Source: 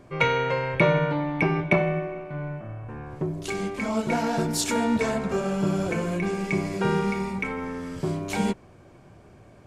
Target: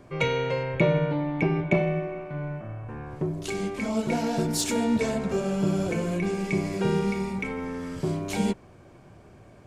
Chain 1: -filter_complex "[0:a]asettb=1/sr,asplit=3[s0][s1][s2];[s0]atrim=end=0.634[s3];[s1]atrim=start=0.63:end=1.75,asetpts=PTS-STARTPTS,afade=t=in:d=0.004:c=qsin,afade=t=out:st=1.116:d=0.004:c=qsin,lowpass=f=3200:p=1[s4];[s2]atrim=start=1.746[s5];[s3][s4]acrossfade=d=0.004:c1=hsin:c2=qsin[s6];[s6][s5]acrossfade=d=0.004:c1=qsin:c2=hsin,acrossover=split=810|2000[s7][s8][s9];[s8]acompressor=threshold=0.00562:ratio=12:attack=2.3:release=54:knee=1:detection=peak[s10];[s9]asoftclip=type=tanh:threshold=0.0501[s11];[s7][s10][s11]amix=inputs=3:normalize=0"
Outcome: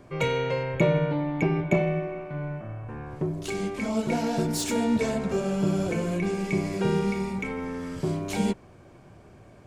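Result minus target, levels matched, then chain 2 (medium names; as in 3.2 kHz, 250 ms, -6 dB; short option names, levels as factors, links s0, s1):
saturation: distortion +12 dB
-filter_complex "[0:a]asettb=1/sr,asplit=3[s0][s1][s2];[s0]atrim=end=0.634[s3];[s1]atrim=start=0.63:end=1.75,asetpts=PTS-STARTPTS,afade=t=in:d=0.004:c=qsin,afade=t=out:st=1.116:d=0.004:c=qsin,lowpass=f=3200:p=1[s4];[s2]atrim=start=1.746[s5];[s3][s4]acrossfade=d=0.004:c1=hsin:c2=qsin[s6];[s6][s5]acrossfade=d=0.004:c1=qsin:c2=hsin,acrossover=split=810|2000[s7][s8][s9];[s8]acompressor=threshold=0.00562:ratio=12:attack=2.3:release=54:knee=1:detection=peak[s10];[s9]asoftclip=type=tanh:threshold=0.15[s11];[s7][s10][s11]amix=inputs=3:normalize=0"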